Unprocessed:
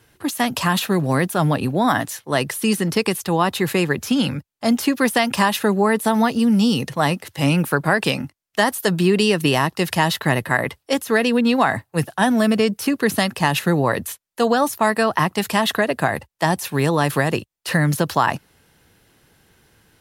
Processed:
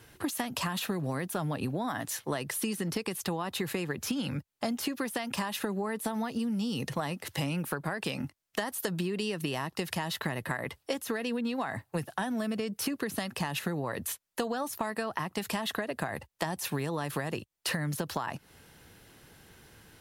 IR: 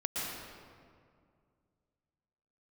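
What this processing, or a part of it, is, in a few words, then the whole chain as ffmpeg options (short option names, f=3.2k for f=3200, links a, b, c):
serial compression, leveller first: -af "acompressor=threshold=-19dB:ratio=3,acompressor=threshold=-31dB:ratio=6,volume=1dB"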